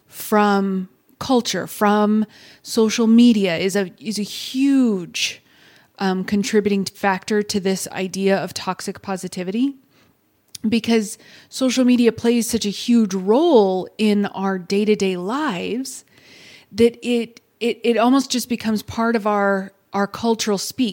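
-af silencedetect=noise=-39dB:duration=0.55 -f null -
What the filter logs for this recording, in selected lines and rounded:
silence_start: 9.75
silence_end: 10.48 | silence_duration: 0.74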